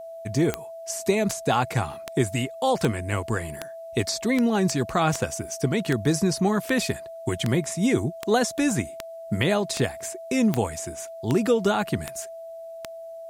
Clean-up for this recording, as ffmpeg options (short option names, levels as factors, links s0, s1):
-af "adeclick=t=4,bandreject=f=660:w=30,agate=range=0.0891:threshold=0.0282"